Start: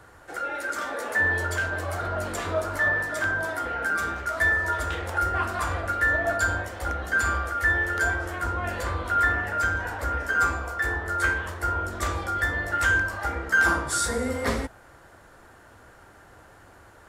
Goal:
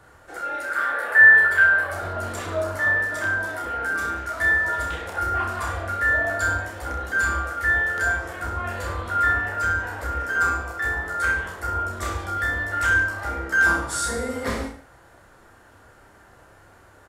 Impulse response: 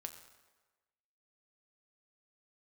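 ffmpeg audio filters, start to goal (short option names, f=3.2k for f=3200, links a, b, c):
-filter_complex "[0:a]asettb=1/sr,asplit=3[a][b][c];[a]atrim=end=0.714[d];[b]atrim=start=0.71:end=1.91,asetpts=PTS-STARTPTS,afade=t=in:d=0.004:c=qsin,afade=t=out:st=1.196:d=0.004:c=qsin,equalizer=f=100:t=o:w=0.67:g=-4,equalizer=f=250:t=o:w=0.67:g=-9,equalizer=f=1.6k:t=o:w=0.67:g=12,equalizer=f=6.3k:t=o:w=0.67:g=-12[e];[c]atrim=start=1.906[f];[d][e]acrossfade=d=0.004:c1=hsin:c2=qsin[g];[g][f]acrossfade=d=0.004:c1=qsin:c2=hsin,aecho=1:1:30|63|99.3|139.2|183.2:0.631|0.398|0.251|0.158|0.1,volume=-2.5dB"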